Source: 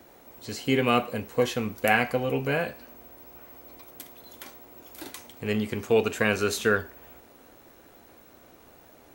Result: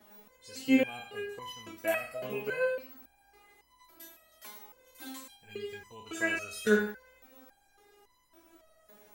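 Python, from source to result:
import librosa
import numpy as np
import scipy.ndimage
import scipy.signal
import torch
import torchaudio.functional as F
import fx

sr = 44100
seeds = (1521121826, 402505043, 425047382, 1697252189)

p1 = fx.spec_trails(x, sr, decay_s=0.36)
p2 = fx.env_flanger(p1, sr, rest_ms=7.6, full_db=-19.5, at=(5.37, 6.06))
p3 = p2 + fx.echo_single(p2, sr, ms=101, db=-11.0, dry=0)
p4 = fx.resonator_held(p3, sr, hz=3.6, low_hz=210.0, high_hz=1000.0)
y = p4 * 10.0 ** (7.0 / 20.0)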